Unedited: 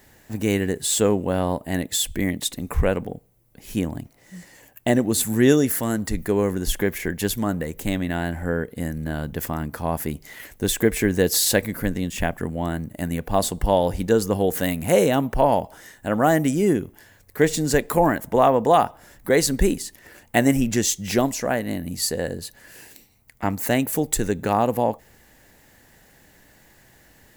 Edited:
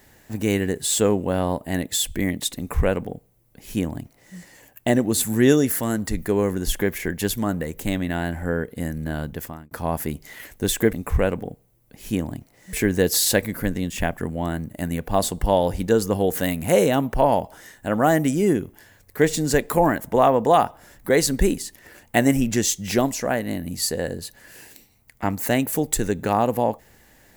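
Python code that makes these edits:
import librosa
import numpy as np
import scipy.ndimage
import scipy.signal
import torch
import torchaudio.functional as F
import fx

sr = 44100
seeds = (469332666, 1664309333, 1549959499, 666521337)

y = fx.edit(x, sr, fx.duplicate(start_s=2.57, length_s=1.8, to_s=10.93),
    fx.fade_out_span(start_s=9.22, length_s=0.49), tone=tone)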